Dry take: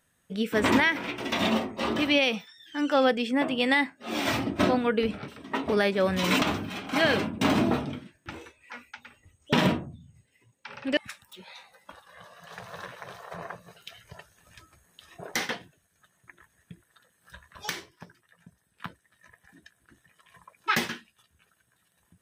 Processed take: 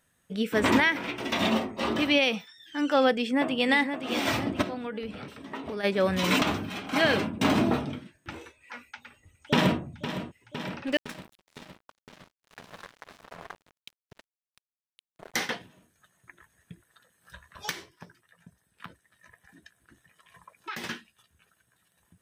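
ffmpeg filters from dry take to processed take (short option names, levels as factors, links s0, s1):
-filter_complex "[0:a]asplit=2[s0][s1];[s1]afade=t=in:st=3.15:d=0.01,afade=t=out:st=3.67:d=0.01,aecho=0:1:520|1040|1560|2080|2600:0.446684|0.201008|0.0904534|0.040704|0.0183168[s2];[s0][s2]amix=inputs=2:normalize=0,asplit=3[s3][s4][s5];[s3]afade=t=out:st=4.61:d=0.02[s6];[s4]acompressor=threshold=0.0158:ratio=2.5:attack=3.2:release=140:knee=1:detection=peak,afade=t=in:st=4.61:d=0.02,afade=t=out:st=5.83:d=0.02[s7];[s5]afade=t=in:st=5.83:d=0.02[s8];[s6][s7][s8]amix=inputs=3:normalize=0,asplit=2[s9][s10];[s10]afade=t=in:st=8.83:d=0.01,afade=t=out:st=9.8:d=0.01,aecho=0:1:510|1020|1530|2040|2550|3060|3570|4080|4590|5100|5610|6120:0.281838|0.211379|0.158534|0.118901|0.0891754|0.0668815|0.0501612|0.0376209|0.0282157|0.0211617|0.0158713|0.0119035[s11];[s9][s11]amix=inputs=2:normalize=0,asettb=1/sr,asplit=3[s12][s13][s14];[s12]atrim=end=10.874[s15];[s13]atrim=start=10.87:end=15.34,asetpts=PTS-STARTPTS,afade=t=in:d=0.004:c=qsin,afade=t=out:st=4.466:d=0.004:c=qsin,aeval=exprs='sgn(val(0))*max(abs(val(0))-0.00944,0)':c=same[s16];[s14]atrim=start=15.336[s17];[s15][s16]acrossfade=d=0.004:c1=hsin:c2=qsin[s18];[s18][s17]acrossfade=d=0.004:c1=qsin:c2=hsin,asettb=1/sr,asplit=3[s19][s20][s21];[s19]atrim=end=17.714[s22];[s20]atrim=start=17.71:end=20.84,asetpts=PTS-STARTPTS,afade=t=in:d=0.004:c=qsin,afade=t=out:st=3.126:d=0.004:c=qsin,acompressor=threshold=0.0141:ratio=3:attack=3.2:release=140:knee=1:detection=peak[s23];[s21]atrim=start=20.836[s24];[s22][s23]acrossfade=d=0.004:c1=hsin:c2=qsin[s25];[s25][s24]acrossfade=d=0.004:c1=qsin:c2=hsin"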